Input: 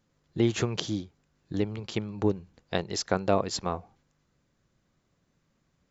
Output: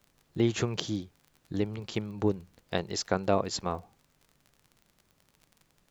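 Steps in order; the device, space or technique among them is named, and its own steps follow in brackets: vinyl LP (crackle 33/s -42 dBFS; pink noise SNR 39 dB); gain -1.5 dB

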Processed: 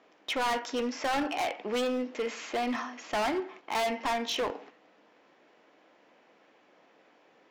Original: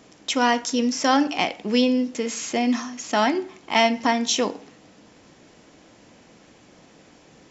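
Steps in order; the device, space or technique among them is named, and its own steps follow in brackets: walkie-talkie (BPF 440–2600 Hz; hard clip -26.5 dBFS, distortion -4 dB; gate -49 dBFS, range -6 dB)

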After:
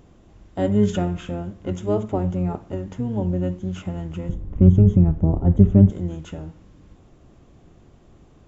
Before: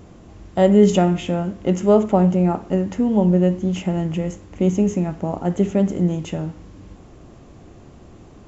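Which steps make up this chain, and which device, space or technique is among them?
octave pedal (harmoniser -12 st -2 dB); 4.29–5.9 tilt -4.5 dB/oct; gain -9 dB

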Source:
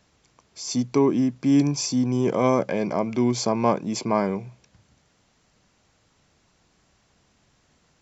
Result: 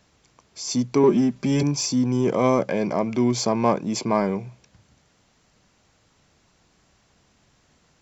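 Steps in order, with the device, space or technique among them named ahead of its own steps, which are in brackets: 1.03–1.63 comb 5.1 ms, depth 96%; parallel distortion (in parallel at -12 dB: hard clip -24 dBFS, distortion -6 dB)

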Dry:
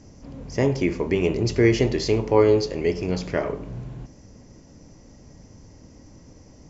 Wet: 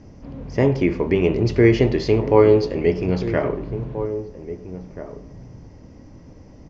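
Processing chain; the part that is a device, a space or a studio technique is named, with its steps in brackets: shout across a valley (air absorption 190 m; outdoor echo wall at 280 m, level -12 dB); gain +4 dB

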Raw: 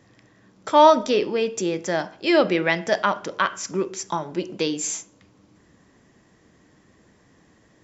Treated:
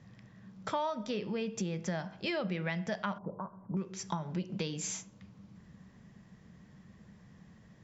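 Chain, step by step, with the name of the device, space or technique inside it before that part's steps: jukebox (LPF 5900 Hz 12 dB/oct; resonant low shelf 240 Hz +6.5 dB, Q 3; compressor 6:1, threshold -27 dBFS, peak gain reduction 16.5 dB); 3.18–3.77 elliptic low-pass 980 Hz, stop band 80 dB; gain -5 dB

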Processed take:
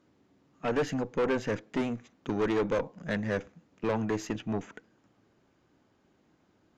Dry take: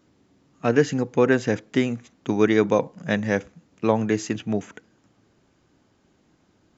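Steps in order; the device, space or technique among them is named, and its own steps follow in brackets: tube preamp driven hard (tube stage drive 22 dB, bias 0.6; low shelf 200 Hz -5 dB; high shelf 4300 Hz -9 dB)

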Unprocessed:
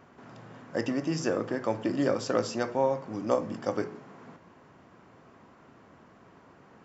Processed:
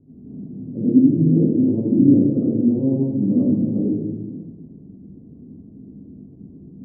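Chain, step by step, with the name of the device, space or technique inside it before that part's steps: next room (LPF 300 Hz 24 dB/oct; reverb RT60 1.2 s, pre-delay 53 ms, DRR -9.5 dB); gain +6 dB

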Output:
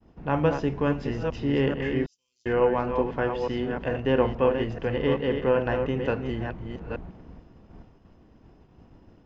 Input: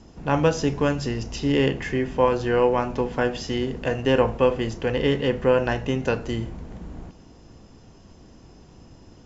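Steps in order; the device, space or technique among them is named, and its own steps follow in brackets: reverse delay 0.435 s, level -6 dB; hearing-loss simulation (LPF 2600 Hz 12 dB/oct; expander -43 dBFS); 2.06–2.46 inverse Chebyshev high-pass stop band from 1900 Hz, stop band 60 dB; gain -3.5 dB

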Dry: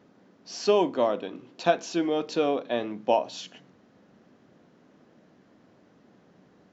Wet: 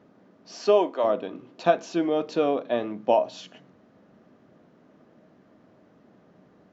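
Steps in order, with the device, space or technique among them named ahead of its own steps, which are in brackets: 0.52–1.03 HPF 140 Hz -> 590 Hz 12 dB/oct; inside a helmet (high shelf 3000 Hz -8 dB; small resonant body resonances 630/1200 Hz, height 7 dB, ringing for 85 ms); gain +1.5 dB

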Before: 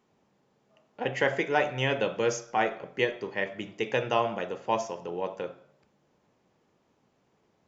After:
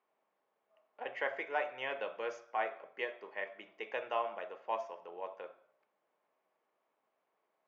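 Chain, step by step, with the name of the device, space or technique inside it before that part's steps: tin-can telephone (BPF 590–2500 Hz; small resonant body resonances 640/1100/2200 Hz, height 6 dB); gain -8 dB

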